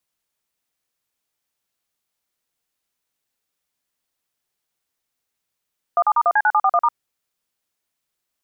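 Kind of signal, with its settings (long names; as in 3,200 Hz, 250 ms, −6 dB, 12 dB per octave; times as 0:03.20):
touch tones "17*1C9741*", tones 53 ms, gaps 43 ms, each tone −15.5 dBFS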